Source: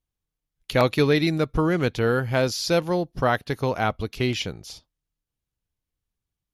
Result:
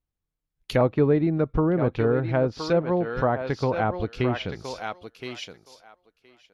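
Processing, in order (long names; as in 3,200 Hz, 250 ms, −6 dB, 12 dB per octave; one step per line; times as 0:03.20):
feedback echo with a high-pass in the loop 1,019 ms, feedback 15%, high-pass 440 Hz, level −7 dB
treble cut that deepens with the level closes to 920 Hz, closed at −17.5 dBFS
one half of a high-frequency compander decoder only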